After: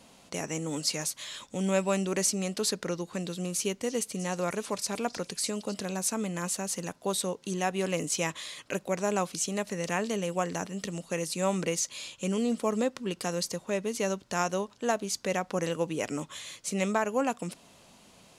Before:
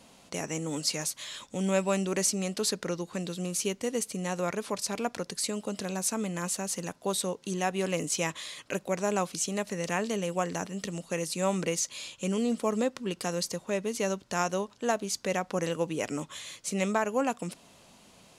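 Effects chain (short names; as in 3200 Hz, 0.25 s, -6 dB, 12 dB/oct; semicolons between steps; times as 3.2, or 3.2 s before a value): 3.57–5.74 delay with a stepping band-pass 0.312 s, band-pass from 4100 Hz, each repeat 0.7 oct, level -9 dB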